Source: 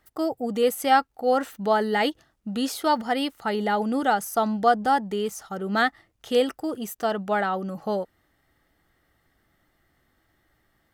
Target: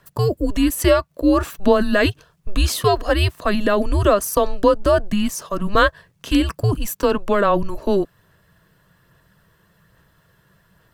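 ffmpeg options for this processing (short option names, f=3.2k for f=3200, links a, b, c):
-af "acompressor=threshold=-21dB:ratio=5,aphaser=in_gain=1:out_gain=1:delay=1.8:decay=0.22:speed=1.2:type=sinusoidal,afreqshift=-200,volume=9dB"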